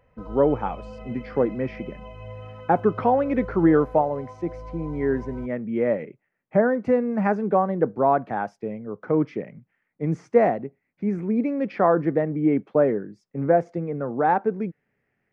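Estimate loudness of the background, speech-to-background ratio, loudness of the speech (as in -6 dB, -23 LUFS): -40.0 LUFS, 16.0 dB, -24.0 LUFS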